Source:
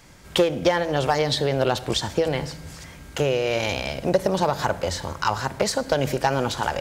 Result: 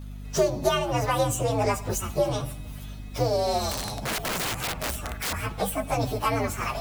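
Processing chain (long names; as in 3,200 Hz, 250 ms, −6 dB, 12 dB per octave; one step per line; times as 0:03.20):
partials spread apart or drawn together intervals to 125%
mains hum 50 Hz, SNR 11 dB
0:03.71–0:05.33: wrap-around overflow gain 23.5 dB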